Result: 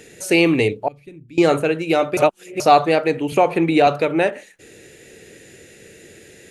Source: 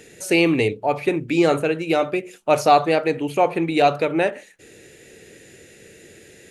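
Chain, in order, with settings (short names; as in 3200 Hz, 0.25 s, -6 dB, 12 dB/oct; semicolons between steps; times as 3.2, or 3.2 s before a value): 0.88–1.38 passive tone stack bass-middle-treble 10-0-1; 2.17–2.6 reverse; 3.32–3.87 three-band squash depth 70%; gain +2 dB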